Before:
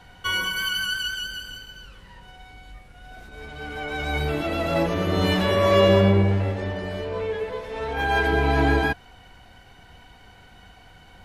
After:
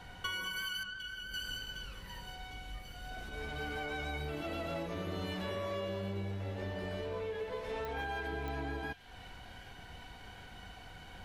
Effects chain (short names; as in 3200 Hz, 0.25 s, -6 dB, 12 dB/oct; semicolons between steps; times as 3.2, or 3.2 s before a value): compressor 12:1, threshold -34 dBFS, peak gain reduction 21 dB; 0.83–1.34 tape spacing loss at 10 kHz 23 dB; thin delay 0.756 s, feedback 75%, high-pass 2900 Hz, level -11 dB; pops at 7.85/8.48, -27 dBFS; gain -1.5 dB